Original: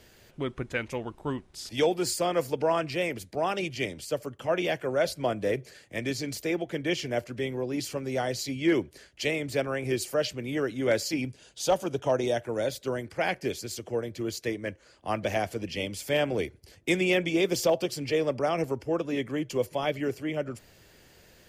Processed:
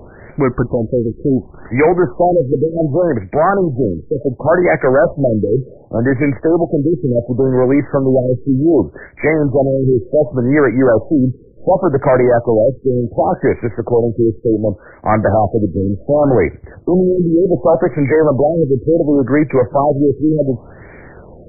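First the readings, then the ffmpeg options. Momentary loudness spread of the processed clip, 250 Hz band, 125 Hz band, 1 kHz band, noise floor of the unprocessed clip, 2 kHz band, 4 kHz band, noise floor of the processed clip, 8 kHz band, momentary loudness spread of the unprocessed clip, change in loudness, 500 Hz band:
6 LU, +17.5 dB, +19.0 dB, +14.5 dB, −57 dBFS, +9.0 dB, below −40 dB, −39 dBFS, below −40 dB, 8 LU, +15.0 dB, +15.5 dB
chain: -af "aeval=exprs='if(lt(val(0),0),0.708*val(0),val(0))':channel_layout=same,apsyclip=28dB,afftfilt=real='re*lt(b*sr/1024,480*pow(2400/480,0.5+0.5*sin(2*PI*0.68*pts/sr)))':imag='im*lt(b*sr/1024,480*pow(2400/480,0.5+0.5*sin(2*PI*0.68*pts/sr)))':win_size=1024:overlap=0.75,volume=-5.5dB"

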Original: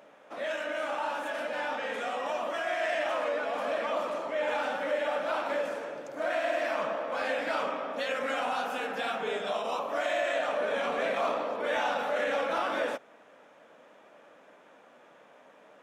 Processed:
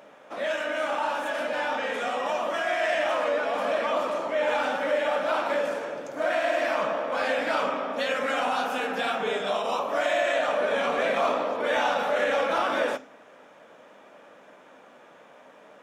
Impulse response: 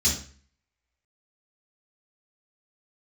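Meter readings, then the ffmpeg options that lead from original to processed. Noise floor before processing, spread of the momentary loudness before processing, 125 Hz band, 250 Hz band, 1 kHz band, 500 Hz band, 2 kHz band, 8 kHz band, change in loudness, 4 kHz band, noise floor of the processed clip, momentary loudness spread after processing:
−57 dBFS, 4 LU, can't be measured, +5.0 dB, +5.0 dB, +4.5 dB, +4.5 dB, +5.5 dB, +5.0 dB, +5.0 dB, −52 dBFS, 4 LU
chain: -filter_complex "[0:a]asplit=2[link_01][link_02];[link_02]highpass=100[link_03];[1:a]atrim=start_sample=2205[link_04];[link_03][link_04]afir=irnorm=-1:irlink=0,volume=-25dB[link_05];[link_01][link_05]amix=inputs=2:normalize=0,volume=5dB"

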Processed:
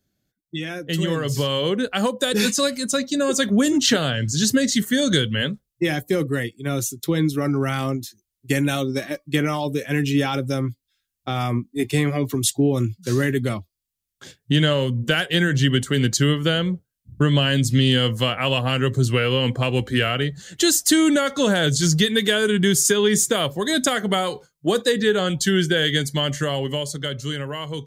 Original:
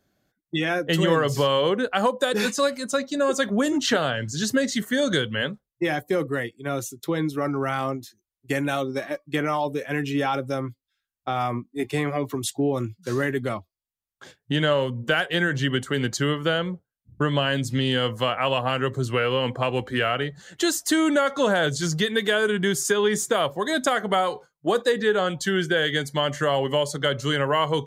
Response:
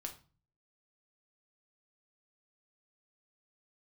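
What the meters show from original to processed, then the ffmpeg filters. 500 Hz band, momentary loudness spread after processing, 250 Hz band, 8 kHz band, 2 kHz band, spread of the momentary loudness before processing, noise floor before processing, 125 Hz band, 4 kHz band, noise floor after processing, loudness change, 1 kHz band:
+0.5 dB, 9 LU, +5.0 dB, +8.0 dB, +1.0 dB, 7 LU, below −85 dBFS, +7.0 dB, +5.0 dB, −82 dBFS, +3.5 dB, −3.0 dB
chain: -af "equalizer=frequency=900:width=0.52:gain=-12.5,dynaudnorm=framelen=170:gausssize=17:maxgain=9.5dB"

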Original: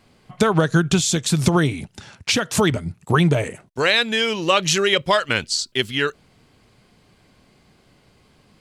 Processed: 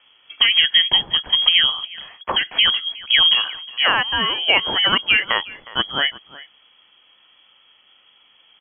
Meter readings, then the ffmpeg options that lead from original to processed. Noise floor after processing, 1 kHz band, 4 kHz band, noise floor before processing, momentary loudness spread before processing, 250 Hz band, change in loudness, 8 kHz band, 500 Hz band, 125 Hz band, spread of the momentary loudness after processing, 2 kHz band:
−56 dBFS, −1.0 dB, +10.0 dB, −57 dBFS, 7 LU, −15.5 dB, +3.5 dB, below −40 dB, −11.5 dB, −20.5 dB, 10 LU, +3.0 dB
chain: -filter_complex "[0:a]lowpass=frequency=2900:width_type=q:width=0.5098,lowpass=frequency=2900:width_type=q:width=0.6013,lowpass=frequency=2900:width_type=q:width=0.9,lowpass=frequency=2900:width_type=q:width=2.563,afreqshift=-3400,asplit=2[link_01][link_02];[link_02]adelay=361.5,volume=-18dB,highshelf=frequency=4000:gain=-8.13[link_03];[link_01][link_03]amix=inputs=2:normalize=0,volume=1.5dB"

